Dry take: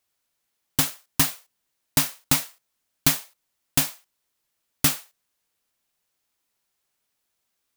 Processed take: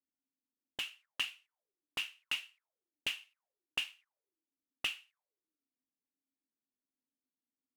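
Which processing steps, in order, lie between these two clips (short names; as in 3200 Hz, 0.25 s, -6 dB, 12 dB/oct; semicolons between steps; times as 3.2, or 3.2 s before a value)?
bell 4300 Hz -5 dB 1.1 oct; auto-wah 260–2800 Hz, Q 11, up, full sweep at -27.5 dBFS; gain +4.5 dB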